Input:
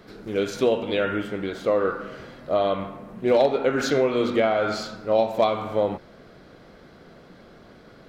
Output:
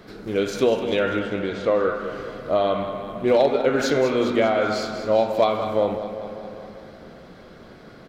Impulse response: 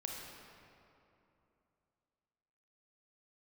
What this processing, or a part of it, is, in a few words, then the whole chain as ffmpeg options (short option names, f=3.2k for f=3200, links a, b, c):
compressed reverb return: -filter_complex "[0:a]asettb=1/sr,asplit=3[a][b][c];[a]atrim=end=1.174[d];[b]atrim=start=1.17:end=1.85,asetpts=PTS-STARTPTS,afade=t=in:d=0.004:c=qsin,afade=t=out:st=0.676:d=0.004:c=qsin,lowpass=6k[e];[c]atrim=start=1.846[f];[d][e]acrossfade=d=0.004:c1=hsin:c2=qsin[g];[g][f]acrossfade=d=0.004:c1=qsin:c2=hsin,aecho=1:1:198|396|594|792|990|1188:0.282|0.161|0.0916|0.0522|0.0298|0.017,asplit=2[h][i];[1:a]atrim=start_sample=2205[j];[i][j]afir=irnorm=-1:irlink=0,acompressor=threshold=-28dB:ratio=6,volume=-4dB[k];[h][k]amix=inputs=2:normalize=0"